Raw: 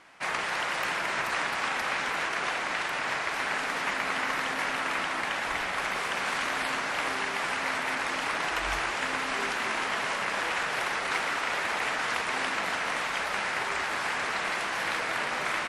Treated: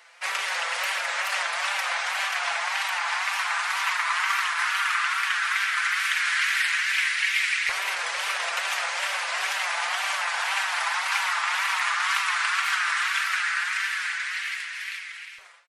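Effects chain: fade out at the end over 2.66 s; comb 5.5 ms; wow and flutter 130 cents; LFO high-pass saw up 0.13 Hz 430–2200 Hz; amplifier tone stack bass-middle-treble 10-0-10; trim +5.5 dB

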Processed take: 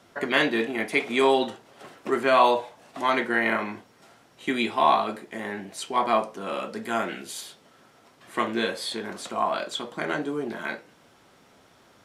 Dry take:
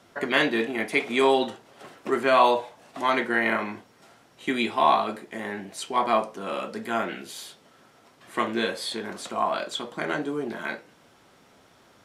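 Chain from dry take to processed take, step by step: 6.76–7.41 s: dynamic bell 8.5 kHz, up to +6 dB, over -54 dBFS, Q 1

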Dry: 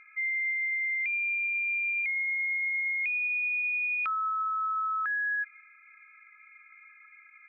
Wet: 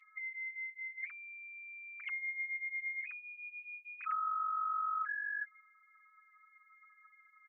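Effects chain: formants replaced by sine waves; high-pass 1.3 kHz 24 dB/octave; peaking EQ 1.9 kHz -14 dB 1 oct; band-stop 2.4 kHz, Q 13; comb 7.1 ms

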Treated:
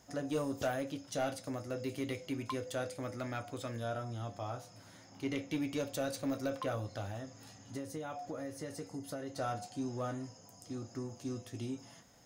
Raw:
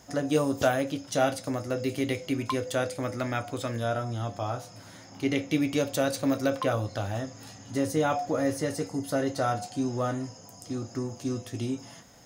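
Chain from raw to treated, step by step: 7.10–9.36 s: compression 10:1, threshold -29 dBFS, peak gain reduction 9.5 dB; saturation -17 dBFS, distortion -19 dB; trim -8.5 dB

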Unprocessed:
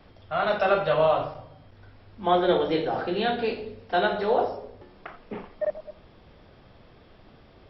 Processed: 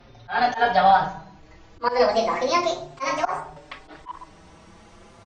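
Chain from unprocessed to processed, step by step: gliding tape speed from 111% -> 182%; slow attack 116 ms; endless flanger 5.2 ms +0.34 Hz; trim +6.5 dB

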